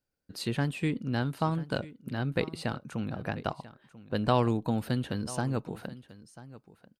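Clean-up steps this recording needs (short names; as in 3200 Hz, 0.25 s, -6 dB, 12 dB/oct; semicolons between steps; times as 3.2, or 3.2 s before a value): inverse comb 0.99 s -17.5 dB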